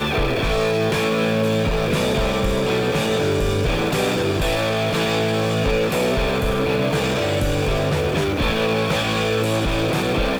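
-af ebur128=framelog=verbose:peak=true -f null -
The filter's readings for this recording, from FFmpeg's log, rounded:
Integrated loudness:
  I:         -20.2 LUFS
  Threshold: -30.1 LUFS
Loudness range:
  LRA:         0.4 LU
  Threshold: -40.2 LUFS
  LRA low:   -20.3 LUFS
  LRA high:  -20.0 LUFS
True peak:
  Peak:       -8.9 dBFS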